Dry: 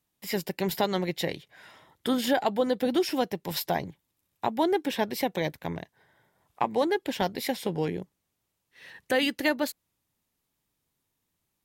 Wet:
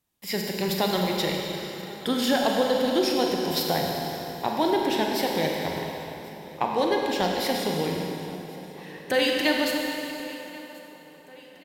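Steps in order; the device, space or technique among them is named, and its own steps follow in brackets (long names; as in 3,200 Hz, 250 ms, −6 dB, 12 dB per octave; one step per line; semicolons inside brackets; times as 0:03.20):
repeating echo 1,083 ms, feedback 57%, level −20 dB
four-comb reverb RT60 3.2 s, combs from 33 ms, DRR 0 dB
saturated reverb return (on a send at −10.5 dB: convolution reverb RT60 2.4 s, pre-delay 73 ms + soft clipping −26 dBFS, distortion −9 dB)
on the sum: dynamic equaliser 4,600 Hz, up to +5 dB, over −49 dBFS, Q 1.4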